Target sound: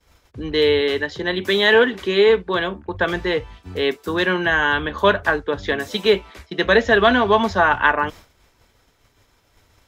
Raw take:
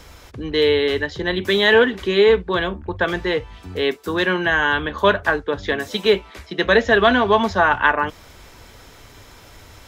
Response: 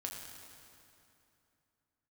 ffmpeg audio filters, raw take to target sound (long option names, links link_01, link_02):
-filter_complex "[0:a]asettb=1/sr,asplit=3[link_01][link_02][link_03];[link_01]atrim=end=0.814[link_04];[link_02]atrim=start=0.81:end=2.94,asetpts=PTS-STARTPTS,afade=type=in:duration=0.004:curve=qsin,afade=type=out:start_time=2.126:duration=0.004:curve=qsin,highpass=frequency=150:poles=1[link_05];[link_03]atrim=start=2.936[link_06];[link_04][link_05]acrossfade=duration=0.004:curve1=hsin:curve2=qsin[link_07];[link_07][link_06]acrossfade=duration=0.004:curve1=qsin:curve2=hsin,agate=range=-33dB:threshold=-33dB:ratio=3:detection=peak"